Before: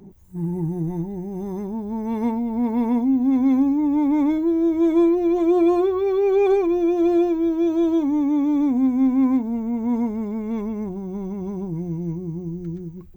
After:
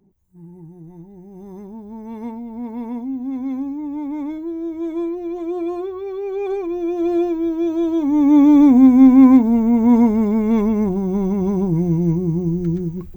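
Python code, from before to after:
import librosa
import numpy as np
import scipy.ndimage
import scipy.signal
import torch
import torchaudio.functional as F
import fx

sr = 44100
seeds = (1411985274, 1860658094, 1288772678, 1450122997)

y = fx.gain(x, sr, db=fx.line((0.8, -15.0), (1.57, -7.0), (6.33, -7.0), (7.2, 0.0), (7.95, 0.0), (8.37, 9.5)))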